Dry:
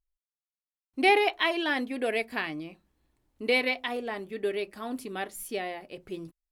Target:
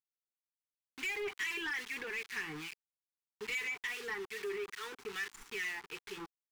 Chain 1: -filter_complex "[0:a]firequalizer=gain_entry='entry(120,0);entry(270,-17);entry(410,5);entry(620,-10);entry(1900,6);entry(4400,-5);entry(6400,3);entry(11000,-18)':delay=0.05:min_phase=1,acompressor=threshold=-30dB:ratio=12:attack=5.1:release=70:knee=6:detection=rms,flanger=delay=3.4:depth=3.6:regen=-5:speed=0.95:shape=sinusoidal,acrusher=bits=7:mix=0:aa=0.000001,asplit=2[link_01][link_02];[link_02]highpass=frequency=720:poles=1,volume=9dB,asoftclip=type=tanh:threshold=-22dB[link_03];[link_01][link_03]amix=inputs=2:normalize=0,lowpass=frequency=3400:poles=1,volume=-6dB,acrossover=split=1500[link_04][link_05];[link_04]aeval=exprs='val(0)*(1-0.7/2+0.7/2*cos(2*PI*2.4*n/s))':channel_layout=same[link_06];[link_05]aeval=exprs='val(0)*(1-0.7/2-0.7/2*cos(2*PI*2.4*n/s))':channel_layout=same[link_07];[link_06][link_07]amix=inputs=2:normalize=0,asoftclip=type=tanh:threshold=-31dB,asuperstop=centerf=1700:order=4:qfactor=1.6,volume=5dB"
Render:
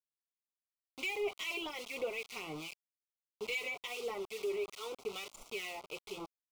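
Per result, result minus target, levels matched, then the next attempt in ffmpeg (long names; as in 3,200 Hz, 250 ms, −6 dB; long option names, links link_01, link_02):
500 Hz band +5.0 dB; soft clipping: distortion −7 dB
-filter_complex "[0:a]firequalizer=gain_entry='entry(120,0);entry(270,-17);entry(410,5);entry(620,-10);entry(1900,6);entry(4400,-5);entry(6400,3);entry(11000,-18)':delay=0.05:min_phase=1,acompressor=threshold=-30dB:ratio=12:attack=5.1:release=70:knee=6:detection=rms,flanger=delay=3.4:depth=3.6:regen=-5:speed=0.95:shape=sinusoidal,acrusher=bits=7:mix=0:aa=0.000001,asplit=2[link_01][link_02];[link_02]highpass=frequency=720:poles=1,volume=9dB,asoftclip=type=tanh:threshold=-22dB[link_03];[link_01][link_03]amix=inputs=2:normalize=0,lowpass=frequency=3400:poles=1,volume=-6dB,acrossover=split=1500[link_04][link_05];[link_04]aeval=exprs='val(0)*(1-0.7/2+0.7/2*cos(2*PI*2.4*n/s))':channel_layout=same[link_06];[link_05]aeval=exprs='val(0)*(1-0.7/2-0.7/2*cos(2*PI*2.4*n/s))':channel_layout=same[link_07];[link_06][link_07]amix=inputs=2:normalize=0,asoftclip=type=tanh:threshold=-31dB,asuperstop=centerf=600:order=4:qfactor=1.6,volume=5dB"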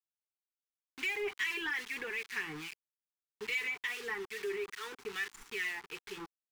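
soft clipping: distortion −7 dB
-filter_complex "[0:a]firequalizer=gain_entry='entry(120,0);entry(270,-17);entry(410,5);entry(620,-10);entry(1900,6);entry(4400,-5);entry(6400,3);entry(11000,-18)':delay=0.05:min_phase=1,acompressor=threshold=-30dB:ratio=12:attack=5.1:release=70:knee=6:detection=rms,flanger=delay=3.4:depth=3.6:regen=-5:speed=0.95:shape=sinusoidal,acrusher=bits=7:mix=0:aa=0.000001,asplit=2[link_01][link_02];[link_02]highpass=frequency=720:poles=1,volume=9dB,asoftclip=type=tanh:threshold=-22dB[link_03];[link_01][link_03]amix=inputs=2:normalize=0,lowpass=frequency=3400:poles=1,volume=-6dB,acrossover=split=1500[link_04][link_05];[link_04]aeval=exprs='val(0)*(1-0.7/2+0.7/2*cos(2*PI*2.4*n/s))':channel_layout=same[link_06];[link_05]aeval=exprs='val(0)*(1-0.7/2-0.7/2*cos(2*PI*2.4*n/s))':channel_layout=same[link_07];[link_06][link_07]amix=inputs=2:normalize=0,asoftclip=type=tanh:threshold=-37dB,asuperstop=centerf=600:order=4:qfactor=1.6,volume=5dB"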